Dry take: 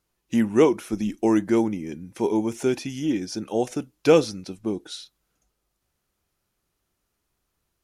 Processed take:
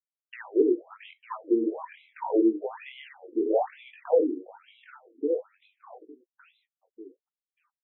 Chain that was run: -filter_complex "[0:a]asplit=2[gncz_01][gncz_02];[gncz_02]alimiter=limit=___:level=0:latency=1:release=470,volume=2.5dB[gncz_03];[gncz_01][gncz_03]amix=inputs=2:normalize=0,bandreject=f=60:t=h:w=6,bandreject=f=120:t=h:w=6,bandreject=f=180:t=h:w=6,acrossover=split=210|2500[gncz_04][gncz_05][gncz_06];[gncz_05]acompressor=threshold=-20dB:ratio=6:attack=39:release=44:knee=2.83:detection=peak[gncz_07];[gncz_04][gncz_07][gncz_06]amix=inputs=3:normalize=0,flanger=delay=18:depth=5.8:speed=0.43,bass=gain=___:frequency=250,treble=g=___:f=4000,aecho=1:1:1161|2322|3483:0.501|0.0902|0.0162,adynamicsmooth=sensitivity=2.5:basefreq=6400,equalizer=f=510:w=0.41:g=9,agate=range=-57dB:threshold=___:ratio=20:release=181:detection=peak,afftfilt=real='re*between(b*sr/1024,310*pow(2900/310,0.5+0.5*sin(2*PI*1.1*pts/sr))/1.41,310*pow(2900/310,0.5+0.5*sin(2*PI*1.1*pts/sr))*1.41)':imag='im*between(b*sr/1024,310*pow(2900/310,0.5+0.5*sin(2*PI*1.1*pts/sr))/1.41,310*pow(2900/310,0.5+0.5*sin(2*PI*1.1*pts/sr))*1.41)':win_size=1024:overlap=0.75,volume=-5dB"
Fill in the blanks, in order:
-13dB, -13, -7, -50dB